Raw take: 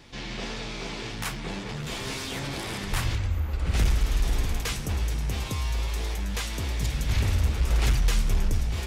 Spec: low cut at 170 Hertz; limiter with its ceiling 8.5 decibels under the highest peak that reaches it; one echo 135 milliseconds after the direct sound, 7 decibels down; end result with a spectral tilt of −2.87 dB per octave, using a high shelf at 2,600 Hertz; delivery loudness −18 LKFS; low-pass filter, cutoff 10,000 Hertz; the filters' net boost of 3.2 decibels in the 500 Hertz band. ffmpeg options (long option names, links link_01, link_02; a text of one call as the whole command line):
ffmpeg -i in.wav -af "highpass=170,lowpass=10000,equalizer=frequency=500:width_type=o:gain=4,highshelf=frequency=2600:gain=4.5,alimiter=limit=-24dB:level=0:latency=1,aecho=1:1:135:0.447,volume=15dB" out.wav